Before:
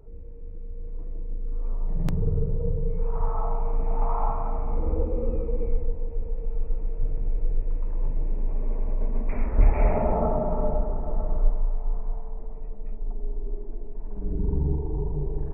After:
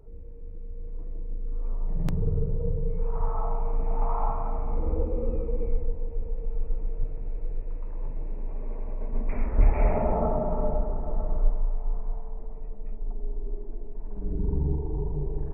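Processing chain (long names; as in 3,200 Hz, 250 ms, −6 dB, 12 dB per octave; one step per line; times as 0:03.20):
0:07.04–0:09.13: low-shelf EQ 380 Hz −5 dB
level −1.5 dB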